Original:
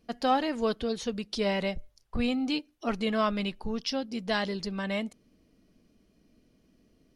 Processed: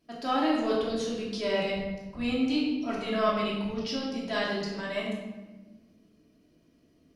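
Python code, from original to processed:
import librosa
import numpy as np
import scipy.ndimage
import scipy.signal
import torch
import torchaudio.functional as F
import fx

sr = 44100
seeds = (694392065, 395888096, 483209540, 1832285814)

y = fx.highpass(x, sr, hz=120.0, slope=6)
y = fx.transient(y, sr, attack_db=-5, sustain_db=1)
y = fx.room_shoebox(y, sr, seeds[0], volume_m3=710.0, walls='mixed', distance_m=2.9)
y = y * librosa.db_to_amplitude(-5.0)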